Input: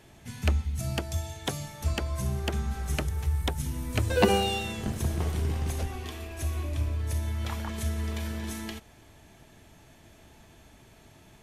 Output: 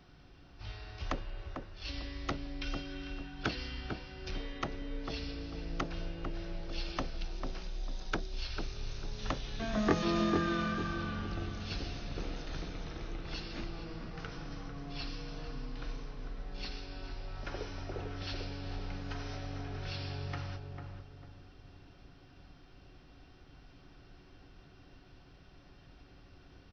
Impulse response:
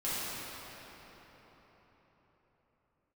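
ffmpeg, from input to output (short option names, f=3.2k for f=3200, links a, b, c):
-filter_complex "[0:a]equalizer=f=2.3k:w=2.9:g=-6,acrossover=split=600[a][b];[a]acompressor=threshold=-36dB:ratio=6[c];[c][b]amix=inputs=2:normalize=0,asplit=2[d][e];[e]adelay=191,lowpass=f=2.3k:p=1,volume=-4dB,asplit=2[f][g];[g]adelay=191,lowpass=f=2.3k:p=1,volume=0.39,asplit=2[h][i];[i]adelay=191,lowpass=f=2.3k:p=1,volume=0.39,asplit=2[j][k];[k]adelay=191,lowpass=f=2.3k:p=1,volume=0.39,asplit=2[l][m];[m]adelay=191,lowpass=f=2.3k:p=1,volume=0.39[n];[d][f][h][j][l][n]amix=inputs=6:normalize=0,asetrate=18846,aresample=44100,volume=-3dB"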